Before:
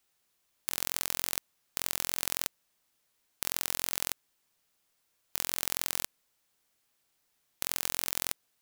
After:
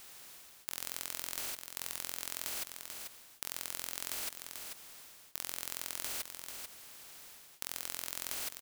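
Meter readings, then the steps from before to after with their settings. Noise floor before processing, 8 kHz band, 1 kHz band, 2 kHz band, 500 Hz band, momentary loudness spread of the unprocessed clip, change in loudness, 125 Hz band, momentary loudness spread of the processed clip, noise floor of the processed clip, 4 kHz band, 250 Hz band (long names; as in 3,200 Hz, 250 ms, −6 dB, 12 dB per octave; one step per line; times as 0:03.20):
−76 dBFS, −5.5 dB, −6.0 dB, −5.5 dB, −6.0 dB, 7 LU, −7.5 dB, −9.0 dB, 12 LU, −58 dBFS, −5.5 dB, −7.5 dB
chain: reverb whose tail is shaped and stops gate 180 ms rising, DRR 9.5 dB
reversed playback
downward compressor 10 to 1, threshold −45 dBFS, peak gain reduction 21 dB
reversed playback
low-shelf EQ 380 Hz −6 dB
on a send: single-tap delay 440 ms −12.5 dB
on the sum: every bin compressed towards the loudest bin 2 to 1
level +11.5 dB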